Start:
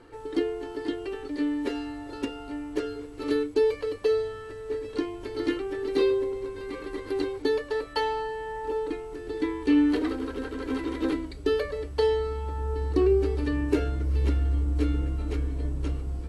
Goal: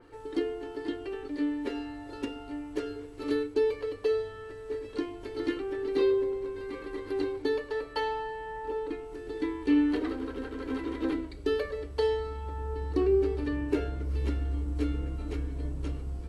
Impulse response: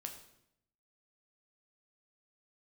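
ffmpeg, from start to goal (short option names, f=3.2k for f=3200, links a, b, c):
-filter_complex "[0:a]asplit=2[a][b];[1:a]atrim=start_sample=2205[c];[b][c]afir=irnorm=-1:irlink=0,volume=-2dB[d];[a][d]amix=inputs=2:normalize=0,adynamicequalizer=threshold=0.00447:dfrequency=4200:dqfactor=0.7:tfrequency=4200:tqfactor=0.7:attack=5:release=100:ratio=0.375:range=3:mode=cutabove:tftype=highshelf,volume=-7dB"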